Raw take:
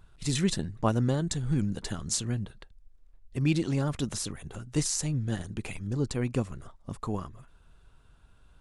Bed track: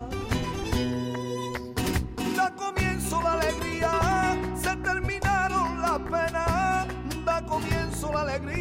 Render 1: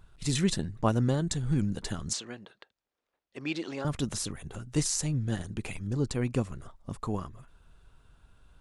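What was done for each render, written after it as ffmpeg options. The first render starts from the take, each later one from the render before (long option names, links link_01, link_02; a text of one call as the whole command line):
ffmpeg -i in.wav -filter_complex "[0:a]asettb=1/sr,asplit=3[link_01][link_02][link_03];[link_01]atrim=end=2.134[link_04];[link_02]atrim=start=2.13:end=3.85,asetpts=PTS-STARTPTS,afade=type=in:duration=0.004:curve=qsin,afade=type=out:start_time=1.716:duration=0.004:curve=qsin,highpass=420,lowpass=5000[link_05];[link_03]atrim=start=3.846[link_06];[link_04][link_05]acrossfade=duration=0.004:curve1=hsin:curve2=qsin[link_07];[link_07][link_06]acrossfade=duration=0.004:curve1=qsin:curve2=hsin" out.wav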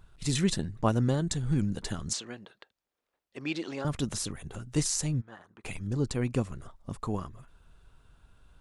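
ffmpeg -i in.wav -filter_complex "[0:a]asplit=3[link_01][link_02][link_03];[link_01]afade=type=out:start_time=5.2:duration=0.02[link_04];[link_02]bandpass=frequency=1100:width_type=q:width=2.4,afade=type=in:start_time=5.2:duration=0.02,afade=type=out:start_time=5.64:duration=0.02[link_05];[link_03]afade=type=in:start_time=5.64:duration=0.02[link_06];[link_04][link_05][link_06]amix=inputs=3:normalize=0" out.wav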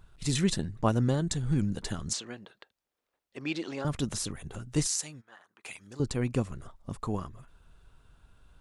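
ffmpeg -i in.wav -filter_complex "[0:a]asettb=1/sr,asplit=3[link_01][link_02][link_03];[link_01]atrim=end=4.874[link_04];[link_02]atrim=start=4.87:end=6,asetpts=PTS-STARTPTS,afade=type=in:duration=0.004:curve=qsin,afade=type=out:start_time=1.126:duration=0.004:curve=qsin,highpass=frequency=1300:poles=1[link_05];[link_03]atrim=start=5.996[link_06];[link_04][link_05]acrossfade=duration=0.004:curve1=hsin:curve2=qsin[link_07];[link_07][link_06]acrossfade=duration=0.004:curve1=qsin:curve2=hsin" out.wav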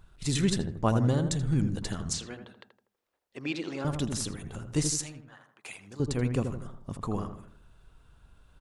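ffmpeg -i in.wav -filter_complex "[0:a]asplit=2[link_01][link_02];[link_02]adelay=81,lowpass=frequency=1300:poles=1,volume=-6dB,asplit=2[link_03][link_04];[link_04]adelay=81,lowpass=frequency=1300:poles=1,volume=0.46,asplit=2[link_05][link_06];[link_06]adelay=81,lowpass=frequency=1300:poles=1,volume=0.46,asplit=2[link_07][link_08];[link_08]adelay=81,lowpass=frequency=1300:poles=1,volume=0.46,asplit=2[link_09][link_10];[link_10]adelay=81,lowpass=frequency=1300:poles=1,volume=0.46,asplit=2[link_11][link_12];[link_12]adelay=81,lowpass=frequency=1300:poles=1,volume=0.46[link_13];[link_01][link_03][link_05][link_07][link_09][link_11][link_13]amix=inputs=7:normalize=0" out.wav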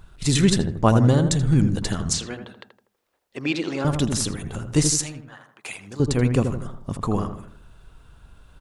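ffmpeg -i in.wav -af "volume=8.5dB" out.wav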